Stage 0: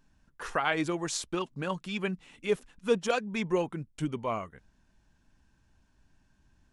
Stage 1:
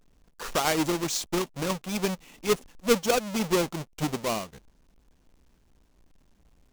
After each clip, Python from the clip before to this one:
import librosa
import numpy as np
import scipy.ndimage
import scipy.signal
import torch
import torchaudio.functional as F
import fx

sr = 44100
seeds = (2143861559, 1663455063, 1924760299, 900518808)

y = fx.halfwave_hold(x, sr)
y = fx.graphic_eq_15(y, sr, hz=(100, 1600, 6300), db=(-8, -4, 3))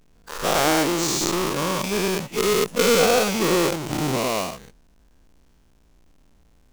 y = fx.spec_dilate(x, sr, span_ms=240)
y = y * librosa.db_to_amplitude(-1.0)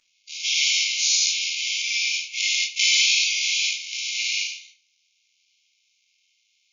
y = fx.brickwall_bandpass(x, sr, low_hz=2100.0, high_hz=7100.0)
y = fx.room_shoebox(y, sr, seeds[0], volume_m3=310.0, walls='furnished', distance_m=2.6)
y = y * librosa.db_to_amplitude(3.0)